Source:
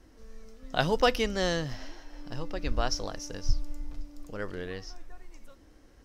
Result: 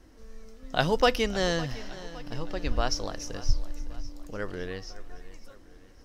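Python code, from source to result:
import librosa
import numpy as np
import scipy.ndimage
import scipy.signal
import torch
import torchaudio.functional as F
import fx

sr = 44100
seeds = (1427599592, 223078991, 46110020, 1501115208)

y = fx.echo_feedback(x, sr, ms=560, feedback_pct=48, wet_db=-17)
y = y * librosa.db_to_amplitude(1.5)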